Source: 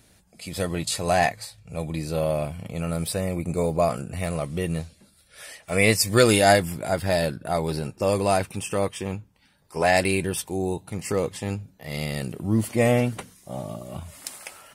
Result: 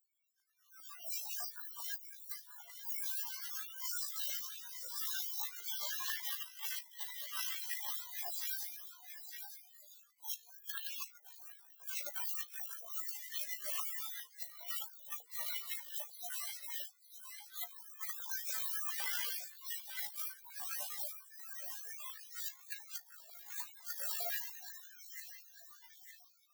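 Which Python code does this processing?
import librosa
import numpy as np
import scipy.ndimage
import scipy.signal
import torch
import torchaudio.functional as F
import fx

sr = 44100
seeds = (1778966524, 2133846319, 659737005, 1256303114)

p1 = fx.spec_flatten(x, sr, power=0.17)
p2 = fx.level_steps(p1, sr, step_db=23)
p3 = p1 + F.gain(torch.from_numpy(p2), -0.5).numpy()
p4 = fx.spec_gate(p3, sr, threshold_db=-25, keep='weak')
p5 = p4 + fx.echo_single(p4, sr, ms=505, db=-9.0, dry=0)
p6 = fx.stretch_grains(p5, sr, factor=1.8, grain_ms=38.0)
p7 = fx.over_compress(p6, sr, threshold_db=-59.0, ratio=-0.5)
p8 = fx.small_body(p7, sr, hz=(2000.0,), ring_ms=45, db=8)
p9 = fx.filter_held_highpass(p8, sr, hz=10.0, low_hz=640.0, high_hz=1800.0)
y = F.gain(torch.from_numpy(p9), 17.0).numpy()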